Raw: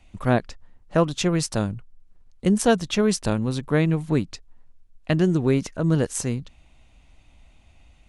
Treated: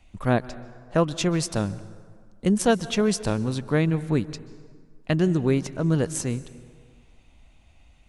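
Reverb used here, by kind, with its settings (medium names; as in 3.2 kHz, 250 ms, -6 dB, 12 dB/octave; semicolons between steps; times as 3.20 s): plate-style reverb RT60 1.8 s, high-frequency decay 0.6×, pre-delay 120 ms, DRR 17 dB; trim -1.5 dB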